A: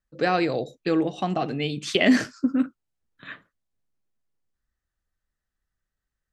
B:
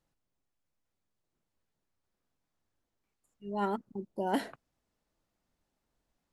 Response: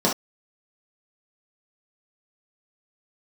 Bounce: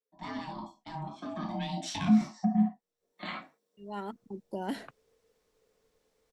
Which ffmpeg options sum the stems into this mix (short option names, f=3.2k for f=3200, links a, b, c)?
-filter_complex "[0:a]aeval=exprs='val(0)*sin(2*PI*470*n/s)':c=same,asoftclip=type=tanh:threshold=-13.5dB,volume=-3.5dB,afade=t=in:st=1.3:d=0.43:silence=0.354813,afade=t=in:st=2.93:d=0.28:silence=0.281838,asplit=3[a][b][c];[b]volume=-7.5dB[d];[1:a]highshelf=f=9.3k:g=-10,adelay=350,volume=2dB,asplit=3[e][f][g];[e]atrim=end=3.12,asetpts=PTS-STARTPTS,afade=t=out:st=3.116:d=0.004:c=hsin[h];[f]atrim=start=3.12:end=3.77,asetpts=PTS-STARTPTS,volume=0[i];[g]atrim=start=3.77,asetpts=PTS-STARTPTS,afade=t=in:d=0.004:c=hsin[j];[h][i][j]concat=n=3:v=0:a=1[k];[c]apad=whole_len=294263[l];[k][l]sidechaincompress=threshold=-53dB:ratio=8:attack=12:release=1450[m];[2:a]atrim=start_sample=2205[n];[d][n]afir=irnorm=-1:irlink=0[o];[a][m][o]amix=inputs=3:normalize=0,highshelf=f=2.1k:g=9,acrossover=split=260[p][q];[q]acompressor=threshold=-35dB:ratio=10[r];[p][r]amix=inputs=2:normalize=0"